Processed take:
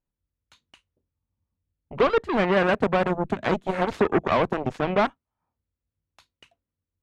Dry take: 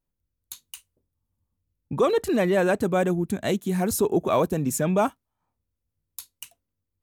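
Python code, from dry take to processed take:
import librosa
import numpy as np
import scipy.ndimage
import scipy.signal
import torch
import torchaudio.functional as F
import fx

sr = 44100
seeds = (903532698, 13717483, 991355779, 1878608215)

y = fx.cheby_harmonics(x, sr, harmonics=(7,), levels_db=(-12,), full_scale_db=-11.0)
y = scipy.signal.sosfilt(scipy.signal.butter(2, 2700.0, 'lowpass', fs=sr, output='sos'), y)
y = fx.band_squash(y, sr, depth_pct=70, at=(2.83, 4.63))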